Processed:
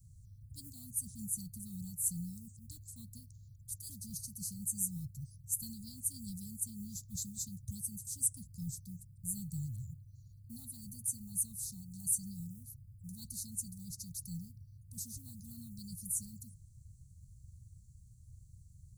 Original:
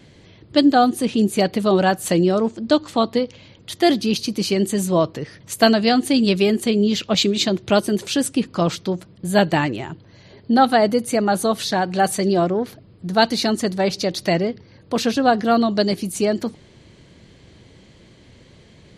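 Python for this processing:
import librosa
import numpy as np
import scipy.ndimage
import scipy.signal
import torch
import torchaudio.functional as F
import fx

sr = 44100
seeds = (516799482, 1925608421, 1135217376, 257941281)

y = fx.quant_companded(x, sr, bits=8)
y = scipy.signal.sosfilt(scipy.signal.cheby2(4, 60, [340.0, 2900.0], 'bandstop', fs=sr, output='sos'), y)
y = y * librosa.db_to_amplitude(-2.0)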